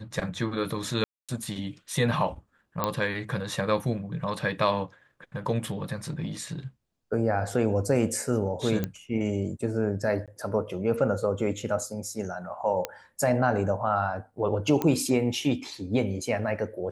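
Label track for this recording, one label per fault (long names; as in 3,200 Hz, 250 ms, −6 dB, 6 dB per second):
1.040000	1.290000	drop-out 246 ms
2.840000	2.840000	click −11 dBFS
8.840000	8.840000	click −15 dBFS
10.260000	10.280000	drop-out 17 ms
12.850000	12.850000	click −13 dBFS
14.820000	14.820000	click −13 dBFS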